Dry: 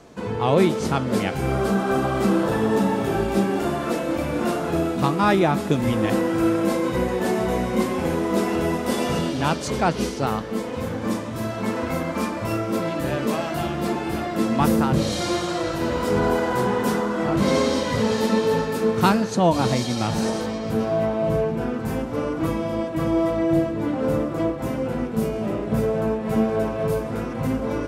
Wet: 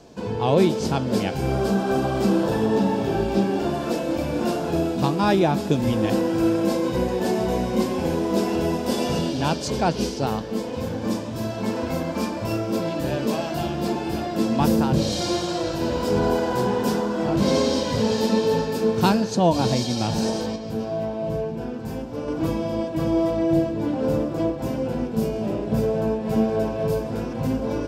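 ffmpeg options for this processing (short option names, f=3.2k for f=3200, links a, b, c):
-filter_complex "[0:a]asettb=1/sr,asplit=3[a][b][c];[a]atrim=end=2.664[d];[b]atrim=start=2.66:end=3.74,asetpts=PTS-STARTPTS,afade=t=in:d=0.004:c=qsin,afade=t=out:st=1.076:d=0.004:c=qsin,acrossover=split=5600[e][f];[f]acompressor=threshold=-50dB:ratio=4:attack=1:release=60[g];[e][g]amix=inputs=2:normalize=0[h];[c]atrim=start=3.736[i];[d][h]acrossfade=d=0.004:c1=hsin:c2=qsin[j];[j][i]acrossfade=d=0.004:c1=qsin:c2=hsin,asplit=3[k][l][m];[k]atrim=end=20.562[n];[l]atrim=start=20.558:end=22.282,asetpts=PTS-STARTPTS,volume=-4.5dB[o];[m]atrim=start=22.278[p];[n][o]acrossfade=d=0.004:c1=hsin:c2=hsin[q];[q][p]acrossfade=d=0.004:c1=hsin:c2=hsin,equalizer=f=1.25k:t=o:w=0.33:g=-9,equalizer=f=2k:t=o:w=0.33:g=-8,equalizer=f=5k:t=o:w=0.33:g=5,equalizer=f=10k:t=o:w=0.33:g=-6"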